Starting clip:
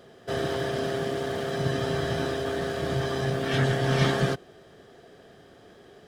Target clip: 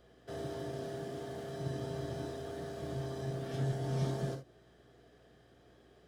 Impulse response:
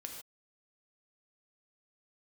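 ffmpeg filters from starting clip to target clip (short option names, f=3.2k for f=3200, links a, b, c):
-filter_complex "[0:a]acrossover=split=350|900|4700[a][b][c][d];[c]acompressor=threshold=-45dB:ratio=6[e];[a][b][e][d]amix=inputs=4:normalize=0,aeval=exprs='val(0)+0.002*(sin(2*PI*60*n/s)+sin(2*PI*2*60*n/s)/2+sin(2*PI*3*60*n/s)/3+sin(2*PI*4*60*n/s)/4+sin(2*PI*5*60*n/s)/5)':c=same[f];[1:a]atrim=start_sample=2205,atrim=end_sample=3528[g];[f][g]afir=irnorm=-1:irlink=0,volume=-7.5dB"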